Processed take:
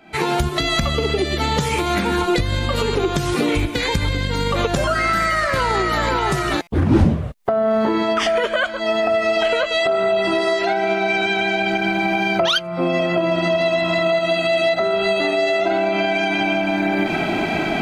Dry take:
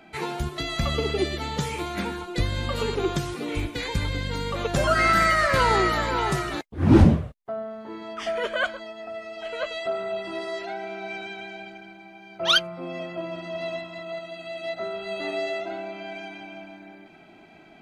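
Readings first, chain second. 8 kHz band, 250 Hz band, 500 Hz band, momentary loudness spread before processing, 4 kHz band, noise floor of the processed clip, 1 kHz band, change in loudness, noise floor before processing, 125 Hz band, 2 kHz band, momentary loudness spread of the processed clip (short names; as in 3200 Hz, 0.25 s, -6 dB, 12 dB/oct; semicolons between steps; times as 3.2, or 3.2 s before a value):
+6.5 dB, +6.5 dB, +10.5 dB, 17 LU, +6.5 dB, -26 dBFS, +7.0 dB, +7.0 dB, -50 dBFS, +4.0 dB, +8.0 dB, 3 LU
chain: recorder AGC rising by 70 dB/s; stuck buffer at 6.62, samples 256, times 8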